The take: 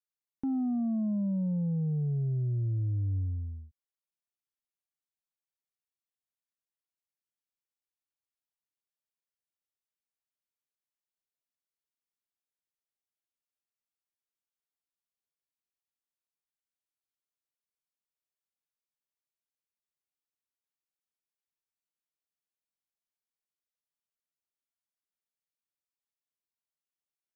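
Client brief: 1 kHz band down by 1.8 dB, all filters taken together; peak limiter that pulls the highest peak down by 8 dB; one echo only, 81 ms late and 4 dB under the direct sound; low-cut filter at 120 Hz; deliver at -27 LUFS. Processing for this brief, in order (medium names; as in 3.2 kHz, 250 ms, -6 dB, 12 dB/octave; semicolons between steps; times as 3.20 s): high-pass 120 Hz; peaking EQ 1 kHz -3 dB; peak limiter -34 dBFS; delay 81 ms -4 dB; trim +11 dB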